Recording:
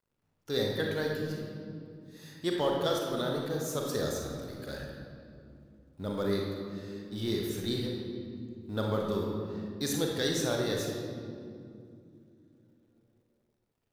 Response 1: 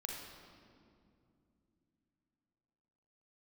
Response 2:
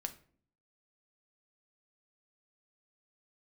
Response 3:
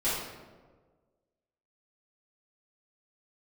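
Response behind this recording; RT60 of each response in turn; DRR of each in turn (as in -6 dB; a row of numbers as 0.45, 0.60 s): 1; not exponential, 0.50 s, 1.5 s; -0.5, 7.0, -12.5 dB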